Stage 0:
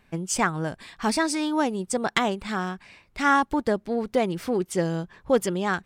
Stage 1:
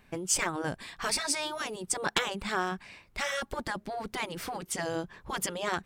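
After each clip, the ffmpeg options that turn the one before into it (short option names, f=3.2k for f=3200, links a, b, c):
-af "afftfilt=real='re*lt(hypot(re,im),0.251)':imag='im*lt(hypot(re,im),0.251)':win_size=1024:overlap=0.75,highshelf=f=11k:g=4.5"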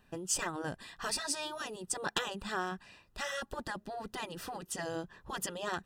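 -af "asuperstop=centerf=2200:order=20:qfactor=6.7,volume=-5dB"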